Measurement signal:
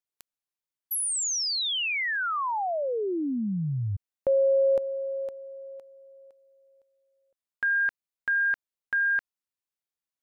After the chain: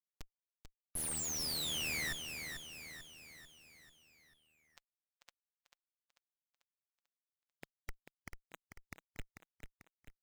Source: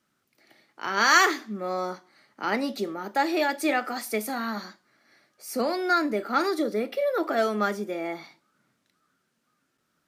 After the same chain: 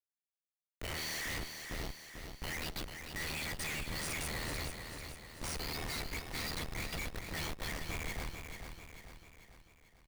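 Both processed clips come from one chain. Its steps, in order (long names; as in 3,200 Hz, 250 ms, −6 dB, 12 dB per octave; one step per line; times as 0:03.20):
brick-wall band-pass 1,800–11,000 Hz
comb filter 6.2 ms, depth 54%
ring modulation 39 Hz
comparator with hysteresis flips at −43.5 dBFS
noise reduction from a noise print of the clip's start 11 dB
on a send: repeating echo 442 ms, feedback 51%, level −7 dB
on the sum: level +1 dB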